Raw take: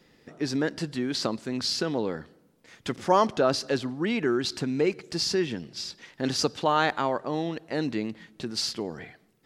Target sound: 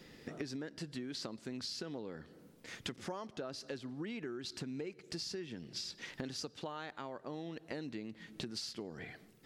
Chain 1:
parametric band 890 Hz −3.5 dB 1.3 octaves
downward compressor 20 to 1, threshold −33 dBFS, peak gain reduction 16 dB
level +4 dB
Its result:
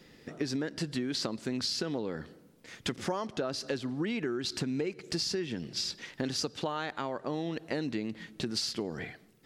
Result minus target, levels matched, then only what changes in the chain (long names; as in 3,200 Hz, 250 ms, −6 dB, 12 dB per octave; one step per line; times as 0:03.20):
downward compressor: peak gain reduction −9.5 dB
change: downward compressor 20 to 1, threshold −43 dBFS, peak gain reduction 25.5 dB